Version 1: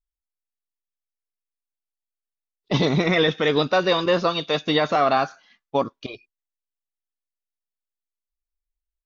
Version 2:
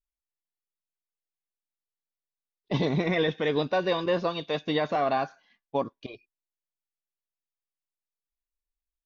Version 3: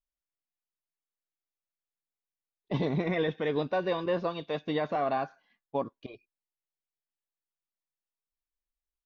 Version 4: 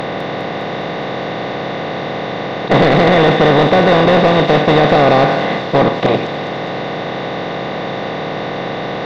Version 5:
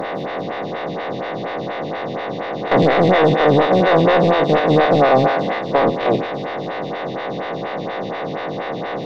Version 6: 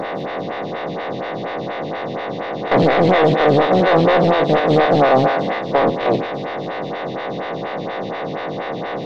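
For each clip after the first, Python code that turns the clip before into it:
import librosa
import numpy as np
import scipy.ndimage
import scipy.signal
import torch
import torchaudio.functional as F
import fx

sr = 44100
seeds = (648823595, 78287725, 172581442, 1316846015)

y1 = fx.high_shelf(x, sr, hz=4600.0, db=-11.5)
y1 = fx.notch(y1, sr, hz=1300.0, q=5.3)
y1 = y1 * librosa.db_to_amplitude(-5.5)
y2 = fx.high_shelf(y1, sr, hz=4200.0, db=-12.0)
y2 = y2 * librosa.db_to_amplitude(-3.0)
y3 = fx.bin_compress(y2, sr, power=0.2)
y3 = fx.fold_sine(y3, sr, drive_db=5, ceiling_db=-8.5)
y3 = fx.echo_wet_highpass(y3, sr, ms=204, feedback_pct=69, hz=4100.0, wet_db=-5)
y3 = y3 * librosa.db_to_amplitude(5.0)
y4 = fx.spec_steps(y3, sr, hold_ms=50)
y4 = fx.stagger_phaser(y4, sr, hz=4.2)
y5 = fx.doppler_dist(y4, sr, depth_ms=0.2)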